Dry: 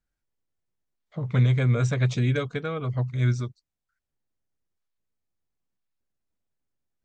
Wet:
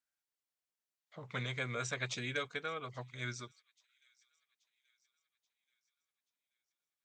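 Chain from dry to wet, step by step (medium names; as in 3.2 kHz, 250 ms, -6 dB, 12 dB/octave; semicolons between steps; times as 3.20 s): high-pass 1.4 kHz 6 dB/octave; on a send: feedback echo behind a high-pass 831 ms, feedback 48%, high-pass 3 kHz, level -24 dB; on the sum: trim -2 dB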